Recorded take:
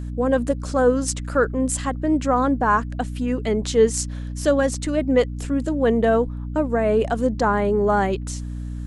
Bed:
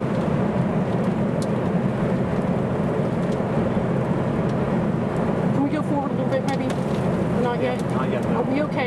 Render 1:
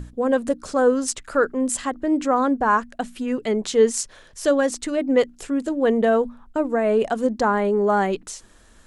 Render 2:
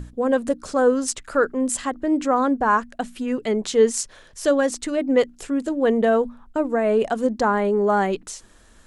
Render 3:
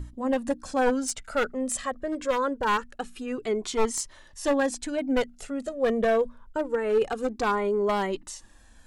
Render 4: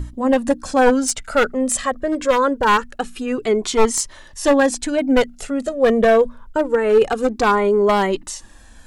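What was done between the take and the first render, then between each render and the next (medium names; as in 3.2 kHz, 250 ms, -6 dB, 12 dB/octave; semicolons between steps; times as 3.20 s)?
hum notches 60/120/180/240/300 Hz
no audible change
one-sided wavefolder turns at -14.5 dBFS; Shepard-style flanger falling 0.25 Hz
trim +9.5 dB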